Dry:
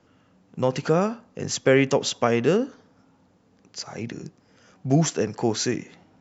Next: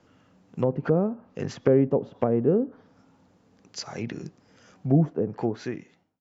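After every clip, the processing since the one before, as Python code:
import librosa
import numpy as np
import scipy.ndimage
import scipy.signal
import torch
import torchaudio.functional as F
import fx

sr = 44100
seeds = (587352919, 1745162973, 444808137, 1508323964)

y = fx.fade_out_tail(x, sr, length_s=1.09)
y = fx.env_lowpass_down(y, sr, base_hz=550.0, full_db=-20.5)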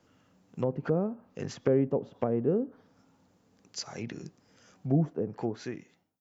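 y = fx.high_shelf(x, sr, hz=6700.0, db=10.5)
y = y * 10.0 ** (-5.5 / 20.0)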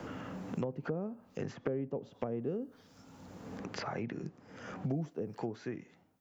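y = fx.band_squash(x, sr, depth_pct=100)
y = y * 10.0 ** (-7.0 / 20.0)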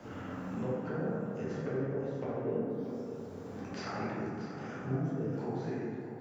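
y = x + 10.0 ** (-11.5 / 20.0) * np.pad(x, (int(635 * sr / 1000.0), 0))[:len(x)]
y = fx.rev_plate(y, sr, seeds[0], rt60_s=2.8, hf_ratio=0.35, predelay_ms=0, drr_db=-9.5)
y = y * 10.0 ** (-8.0 / 20.0)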